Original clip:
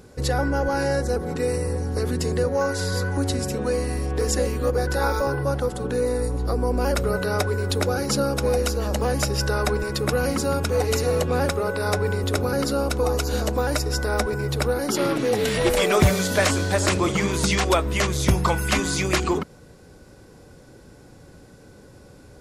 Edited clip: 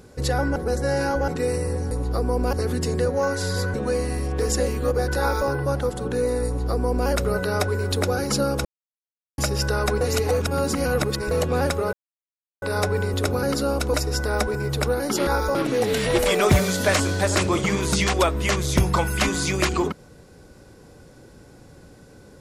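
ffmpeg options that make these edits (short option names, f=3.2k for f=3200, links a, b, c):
-filter_complex "[0:a]asplit=14[a][b][c][d][e][f][g][h][i][j][k][l][m][n];[a]atrim=end=0.562[o];[b]atrim=start=0.558:end=1.282,asetpts=PTS-STARTPTS,areverse[p];[c]atrim=start=1.278:end=1.912[q];[d]atrim=start=6.248:end=6.872[r];[e]atrim=start=1.908:end=3.122[s];[f]atrim=start=3.528:end=8.44,asetpts=PTS-STARTPTS,afade=t=out:st=4.908:d=0.004:c=hsin[t];[g]atrim=start=8.44:end=9.17,asetpts=PTS-STARTPTS,volume=0[u];[h]atrim=start=9.17:end=9.802,asetpts=PTS-STARTPTS,afade=t=in:d=0.004:c=hsin[v];[i]atrim=start=9.798:end=11.102,asetpts=PTS-STARTPTS,areverse[w];[j]atrim=start=11.098:end=11.72,asetpts=PTS-STARTPTS,afade=t=out:st=0.618:d=0.004:c=hsin,apad=pad_dur=0.69[x];[k]atrim=start=11.72:end=13.042,asetpts=PTS-STARTPTS,afade=t=in:d=0.004:c=hsin[y];[l]atrim=start=13.728:end=15.062[z];[m]atrim=start=4.988:end=5.272[aa];[n]atrim=start=15.058[ab];[o][p]acrossfade=d=0.004:c1=hsin:c2=hsin[ac];[ac][q]acrossfade=d=0.004:c1=hsin:c2=hsin[ad];[ad][r]acrossfade=d=0.004:c1=hsin:c2=hsin[ae];[ae][s]acrossfade=d=0.004:c1=hsin:c2=hsin[af];[t][u][v]concat=n=3:v=0:a=1[ag];[af][ag]acrossfade=d=0.004:c1=hsin:c2=hsin[ah];[ah][w]acrossfade=d=0.004:c1=hsin:c2=hsin[ai];[x][y]concat=n=2:v=0:a=1[aj];[ai][aj]acrossfade=d=0.004:c1=hsin:c2=hsin[ak];[ak][z]acrossfade=d=0.004:c1=hsin:c2=hsin[al];[al][aa]acrossfade=d=0.004:c1=hsin:c2=hsin[am];[am][ab]acrossfade=d=0.004:c1=hsin:c2=hsin"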